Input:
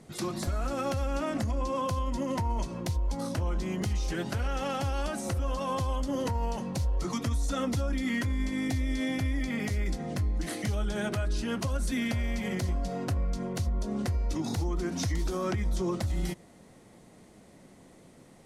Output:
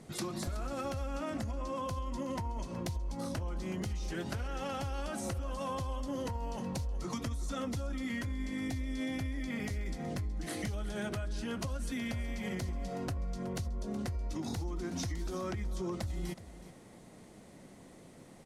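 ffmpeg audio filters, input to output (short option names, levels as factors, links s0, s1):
-filter_complex "[0:a]acompressor=threshold=0.02:ratio=6,asplit=2[s0][s1];[s1]aecho=0:1:371:0.178[s2];[s0][s2]amix=inputs=2:normalize=0"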